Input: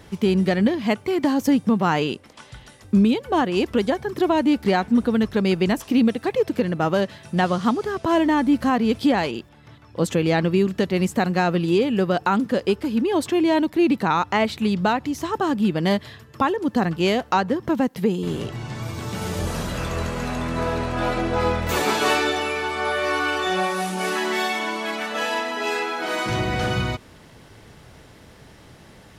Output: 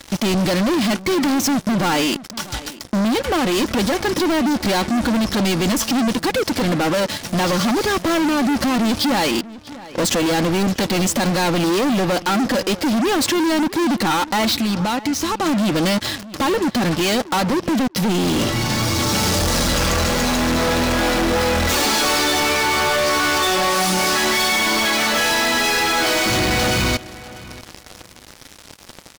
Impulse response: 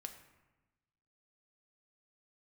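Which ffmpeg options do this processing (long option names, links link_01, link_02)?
-filter_complex "[0:a]equalizer=frequency=5200:width=1.1:gain=9.5,aecho=1:1:3.6:0.46,acontrast=78,alimiter=limit=-10dB:level=0:latency=1:release=52,asettb=1/sr,asplit=3[link_01][link_02][link_03];[link_01]atrim=end=14.564[link_04];[link_02]atrim=start=14.56:end=15.46,asetpts=PTS-STARTPTS,afade=type=in:duration=0.004:curve=qsin,afade=type=out:start_time=0.896:duration=0.004:curve=qsin,acompressor=threshold=-23dB:ratio=10[link_05];[link_03]atrim=start=15.456[link_06];[link_04][link_05]acrossfade=duration=0.004:curve1=hsin:curve2=qsin[link_07];[link_07][link_06]acrossfade=duration=0.004:curve1=qsin:curve2=hsin,asoftclip=type=tanh:threshold=-24.5dB,acrusher=bits=4:mix=0:aa=0.5,asplit=2[link_08][link_09];[link_09]adelay=643,lowpass=frequency=2900:poles=1,volume=-17.5dB,asplit=2[link_10][link_11];[link_11]adelay=643,lowpass=frequency=2900:poles=1,volume=0.2[link_12];[link_08][link_10][link_12]amix=inputs=3:normalize=0,volume=7dB"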